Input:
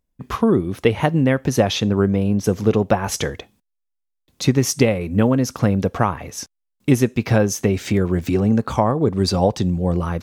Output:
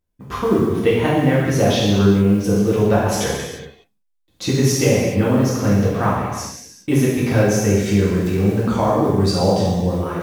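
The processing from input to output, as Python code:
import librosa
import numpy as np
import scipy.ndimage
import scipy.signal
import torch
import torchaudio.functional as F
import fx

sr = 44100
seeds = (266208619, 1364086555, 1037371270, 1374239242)

y = fx.mod_noise(x, sr, seeds[0], snr_db=33)
y = fx.rev_gated(y, sr, seeds[1], gate_ms=450, shape='falling', drr_db=-7.5)
y = y * 10.0 ** (-6.5 / 20.0)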